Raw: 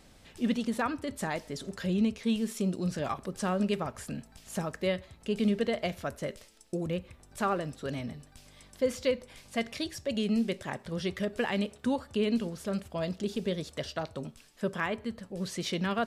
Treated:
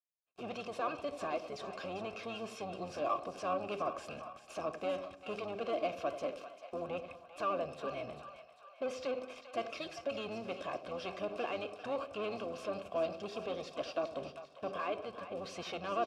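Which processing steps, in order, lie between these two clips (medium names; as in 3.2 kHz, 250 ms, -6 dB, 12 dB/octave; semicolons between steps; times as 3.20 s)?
gate -49 dBFS, range -39 dB; peaking EQ 710 Hz -4.5 dB 1 oct; comb 1.9 ms, depth 58%; dynamic bell 5.3 kHz, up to +7 dB, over -59 dBFS, Q 2.7; waveshaping leveller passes 3; peak limiter -25 dBFS, peak gain reduction 9 dB; vowel filter a; harmony voices -12 st -11 dB; two-band feedback delay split 630 Hz, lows 86 ms, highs 396 ms, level -11 dB; trim +6 dB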